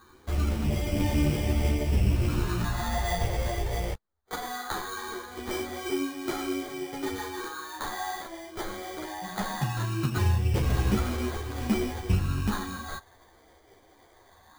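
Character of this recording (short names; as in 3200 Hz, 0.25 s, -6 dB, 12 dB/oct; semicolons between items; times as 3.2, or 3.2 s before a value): phasing stages 4, 0.2 Hz, lowest notch 230–1700 Hz; aliases and images of a low sample rate 2700 Hz, jitter 0%; a shimmering, thickened sound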